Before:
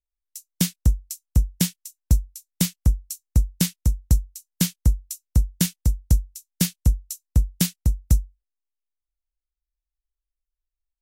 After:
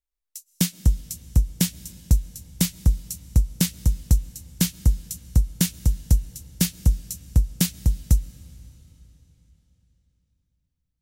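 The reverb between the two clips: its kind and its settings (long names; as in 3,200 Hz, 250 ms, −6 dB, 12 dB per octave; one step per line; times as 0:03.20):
comb and all-pass reverb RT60 4 s, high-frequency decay 0.95×, pre-delay 85 ms, DRR 18 dB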